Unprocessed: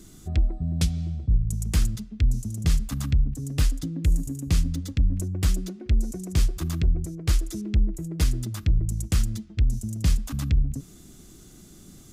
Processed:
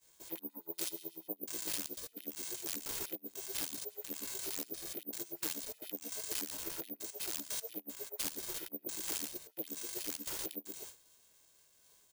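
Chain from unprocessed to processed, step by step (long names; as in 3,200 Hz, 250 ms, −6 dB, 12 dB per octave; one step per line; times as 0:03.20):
spectrum averaged block by block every 100 ms
downward expander −37 dBFS
first-order pre-emphasis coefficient 0.8
comb filter 1.8 ms, depth 86%
soft clipping −35.5 dBFS, distortion −7 dB
ring modulation 250 Hz
auto-filter high-pass sine 8.2 Hz 500–3,300 Hz
bad sample-rate conversion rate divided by 3×, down none, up zero stuff
level +4.5 dB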